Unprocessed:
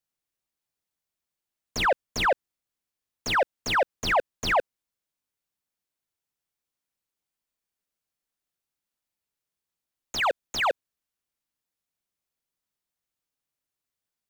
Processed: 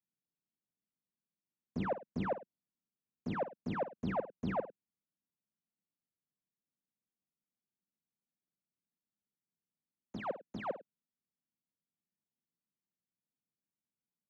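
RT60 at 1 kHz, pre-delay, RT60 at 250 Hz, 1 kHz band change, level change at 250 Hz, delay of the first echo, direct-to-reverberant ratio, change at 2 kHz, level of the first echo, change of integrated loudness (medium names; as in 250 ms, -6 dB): no reverb, no reverb, no reverb, -15.0 dB, +2.0 dB, 52 ms, no reverb, -21.5 dB, -12.5 dB, -13.5 dB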